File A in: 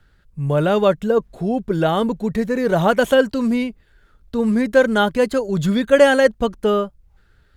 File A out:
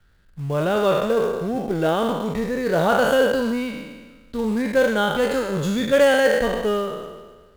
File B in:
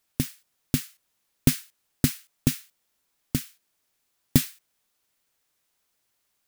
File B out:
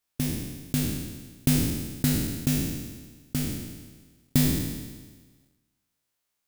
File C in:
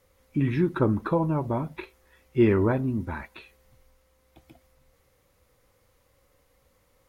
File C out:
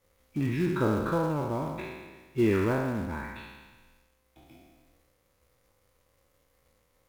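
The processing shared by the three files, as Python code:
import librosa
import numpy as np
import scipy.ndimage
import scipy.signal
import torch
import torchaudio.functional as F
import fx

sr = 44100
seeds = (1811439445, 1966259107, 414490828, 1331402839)

p1 = fx.spec_trails(x, sr, decay_s=1.38)
p2 = fx.quant_companded(p1, sr, bits=4)
p3 = p1 + (p2 * 10.0 ** (-9.0 / 20.0))
y = p3 * 10.0 ** (-8.5 / 20.0)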